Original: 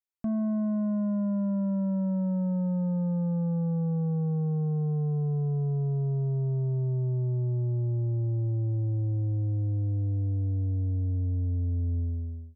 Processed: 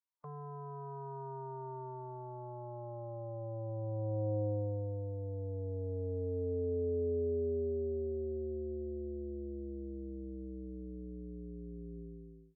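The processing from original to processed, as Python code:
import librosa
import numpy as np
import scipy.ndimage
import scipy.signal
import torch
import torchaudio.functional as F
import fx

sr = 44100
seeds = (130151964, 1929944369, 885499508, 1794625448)

y = fx.filter_sweep_bandpass(x, sr, from_hz=1000.0, to_hz=380.0, start_s=1.59, end_s=5.18, q=7.8)
y = fx.pitch_keep_formants(y, sr, semitones=-7.0)
y = F.gain(torch.from_numpy(y), 8.5).numpy()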